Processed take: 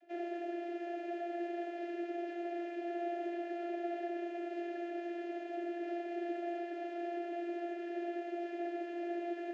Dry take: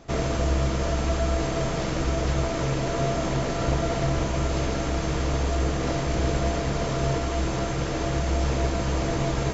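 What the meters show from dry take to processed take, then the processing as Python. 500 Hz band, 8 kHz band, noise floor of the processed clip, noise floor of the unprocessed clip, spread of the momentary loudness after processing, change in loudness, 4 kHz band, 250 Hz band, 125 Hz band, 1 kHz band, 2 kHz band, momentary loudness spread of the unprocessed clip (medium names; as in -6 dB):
-11.0 dB, no reading, -44 dBFS, -28 dBFS, 2 LU, -14.0 dB, -24.0 dB, -9.5 dB, under -40 dB, -11.5 dB, -14.5 dB, 2 LU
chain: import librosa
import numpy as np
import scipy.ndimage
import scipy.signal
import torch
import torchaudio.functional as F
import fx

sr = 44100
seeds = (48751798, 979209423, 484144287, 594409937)

y = fx.vocoder(x, sr, bands=32, carrier='saw', carrier_hz=345.0)
y = fx.vowel_filter(y, sr, vowel='e')
y = F.gain(torch.from_numpy(y), 4.0).numpy()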